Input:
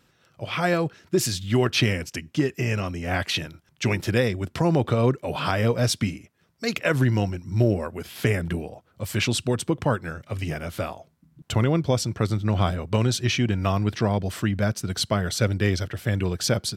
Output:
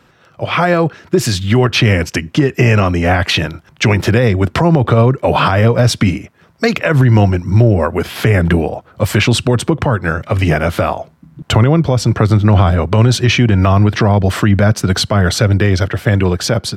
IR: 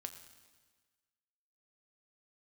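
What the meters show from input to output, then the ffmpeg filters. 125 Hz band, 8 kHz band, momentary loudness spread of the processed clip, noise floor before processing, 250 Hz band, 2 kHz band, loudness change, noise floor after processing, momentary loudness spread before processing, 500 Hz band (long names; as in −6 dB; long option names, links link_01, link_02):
+13.0 dB, +7.0 dB, 6 LU, −64 dBFS, +11.0 dB, +11.5 dB, +11.5 dB, −49 dBFS, 9 LU, +11.0 dB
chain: -filter_complex "[0:a]dynaudnorm=framelen=260:gausssize=11:maxgain=6dB,equalizer=frequency=1000:width_type=o:width=2.3:gain=4.5,acrossover=split=150[link_01][link_02];[link_02]acompressor=threshold=-19dB:ratio=6[link_03];[link_01][link_03]amix=inputs=2:normalize=0,highshelf=frequency=4100:gain=-8,alimiter=level_in=12.5dB:limit=-1dB:release=50:level=0:latency=1,volume=-1dB"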